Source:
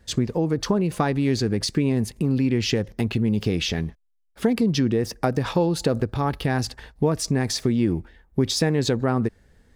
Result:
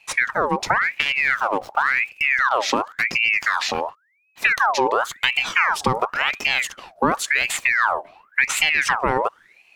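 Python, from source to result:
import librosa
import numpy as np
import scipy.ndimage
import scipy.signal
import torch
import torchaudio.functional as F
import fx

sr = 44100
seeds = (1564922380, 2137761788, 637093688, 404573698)

y = fx.median_filter(x, sr, points=41, at=(0.81, 2.12))
y = fx.ring_lfo(y, sr, carrier_hz=1600.0, swing_pct=60, hz=0.93)
y = y * 10.0 ** (4.5 / 20.0)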